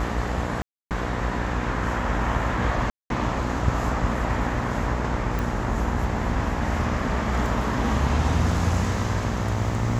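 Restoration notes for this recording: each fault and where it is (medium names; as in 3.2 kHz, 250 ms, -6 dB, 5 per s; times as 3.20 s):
buzz 60 Hz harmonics 22 -29 dBFS
0.62–0.91 s: dropout 288 ms
2.90–3.10 s: dropout 202 ms
5.39 s: pop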